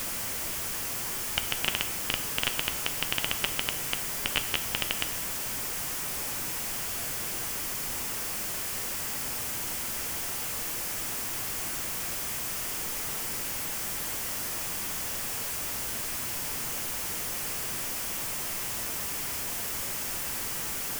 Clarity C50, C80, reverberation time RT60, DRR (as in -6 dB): 12.5 dB, 14.0 dB, 1.2 s, 9.0 dB